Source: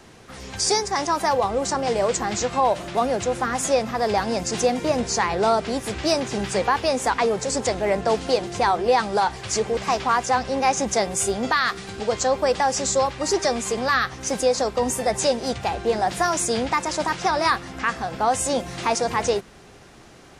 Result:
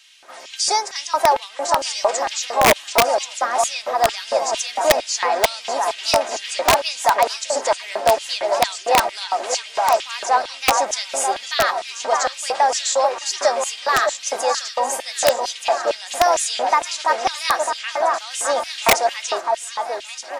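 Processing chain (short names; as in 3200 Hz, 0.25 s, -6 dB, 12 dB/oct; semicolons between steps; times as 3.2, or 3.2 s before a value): echo with dull and thin repeats by turns 0.612 s, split 1700 Hz, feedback 71%, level -5 dB; LFO high-pass square 2.2 Hz 690–3000 Hz; comb 3.2 ms, depth 38%; wrapped overs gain 5.5 dB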